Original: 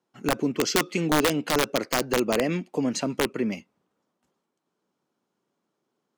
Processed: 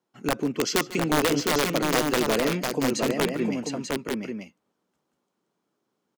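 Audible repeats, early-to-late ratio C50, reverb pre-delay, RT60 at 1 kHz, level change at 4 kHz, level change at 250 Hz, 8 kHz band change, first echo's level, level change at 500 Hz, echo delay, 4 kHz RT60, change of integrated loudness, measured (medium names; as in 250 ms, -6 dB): 3, no reverb, no reverb, no reverb, +1.0 dB, +1.0 dB, +1.0 dB, -19.0 dB, +1.0 dB, 146 ms, no reverb, 0.0 dB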